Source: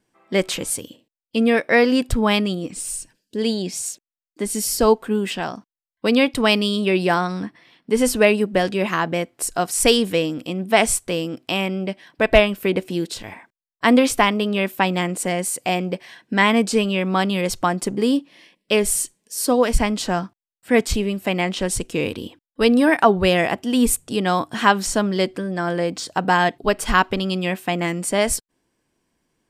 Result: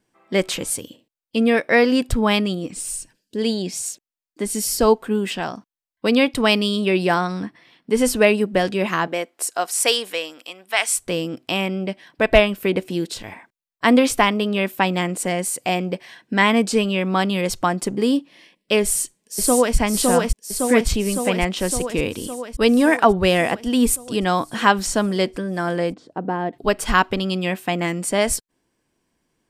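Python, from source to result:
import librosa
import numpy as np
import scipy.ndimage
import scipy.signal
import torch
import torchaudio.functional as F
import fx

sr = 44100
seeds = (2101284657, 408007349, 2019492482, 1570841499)

y = fx.highpass(x, sr, hz=fx.line((9.06, 320.0), (10.97, 1300.0)), slope=12, at=(9.06, 10.97), fade=0.02)
y = fx.echo_throw(y, sr, start_s=18.82, length_s=0.94, ms=560, feedback_pct=70, wet_db=-1.5)
y = fx.bandpass_q(y, sr, hz=310.0, q=1.0, at=(25.94, 26.53))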